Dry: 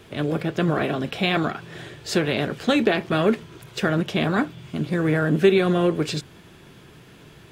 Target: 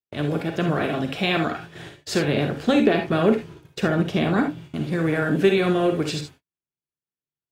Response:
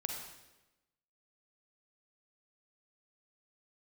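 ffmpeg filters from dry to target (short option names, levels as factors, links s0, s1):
-filter_complex "[0:a]asettb=1/sr,asplit=3[s0][s1][s2];[s0]atrim=end=2.244[s3];[s1]atrim=start=2.24:end=4.64,asetpts=PTS-STARTPTS,afade=t=in:d=0.004:c=qsin,afade=t=out:st=2.396:d=0.004:c=qsin,tiltshelf=f=890:g=3[s4];[s2]atrim=start=4.636[s5];[s3][s4]acrossfade=d=0.004:c1=hsin:c2=qsin[s6];[s6][s5]acrossfade=d=0.004:c1=qsin:c2=hsin,agate=range=0.002:threshold=0.0126:ratio=16:detection=peak[s7];[1:a]atrim=start_sample=2205,afade=t=out:st=0.13:d=0.01,atrim=end_sample=6174[s8];[s7][s8]afir=irnorm=-1:irlink=0"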